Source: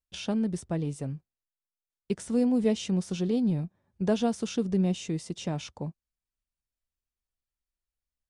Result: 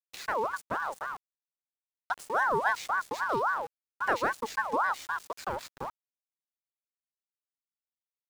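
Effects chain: sample gate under -39.5 dBFS; ring modulator with a swept carrier 990 Hz, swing 35%, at 3.7 Hz

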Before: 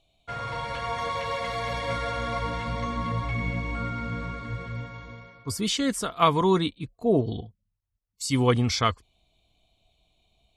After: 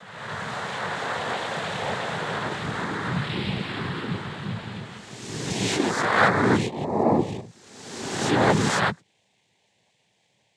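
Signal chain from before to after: spectral swells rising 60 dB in 1.36 s; dynamic EQ 4900 Hz, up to -5 dB, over -38 dBFS, Q 0.83; noise vocoder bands 6

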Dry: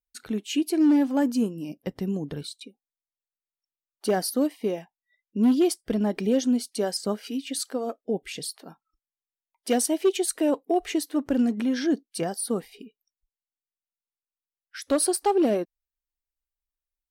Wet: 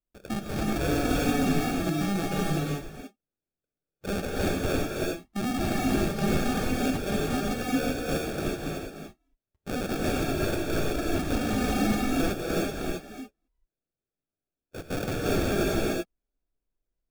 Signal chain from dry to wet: LPF 5700 Hz 12 dB/oct; notch 4200 Hz; in parallel at -8 dB: soft clip -22.5 dBFS, distortion -11 dB; on the sum: sample-rate reducer 1000 Hz, jitter 0%; wavefolder -24 dBFS; non-linear reverb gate 0.41 s rising, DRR -3.5 dB; gain -1 dB

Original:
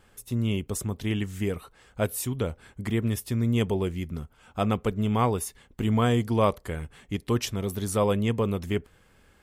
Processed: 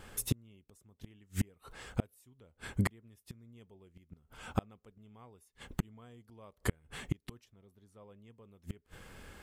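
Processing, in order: flipped gate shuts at -25 dBFS, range -39 dB; 7.44–8.18 high shelf 4400 Hz -9 dB; gain +7 dB

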